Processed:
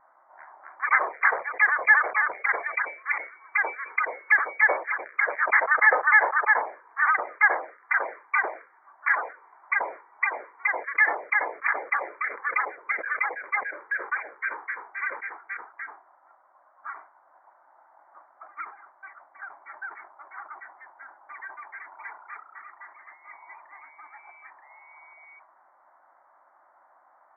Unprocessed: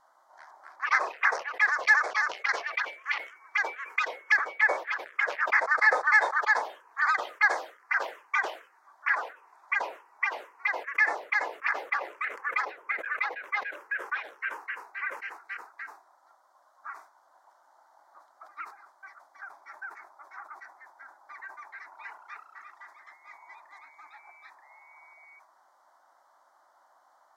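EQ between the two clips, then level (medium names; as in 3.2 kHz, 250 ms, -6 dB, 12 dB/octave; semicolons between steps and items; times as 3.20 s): brick-wall FIR low-pass 2.4 kHz; +3.5 dB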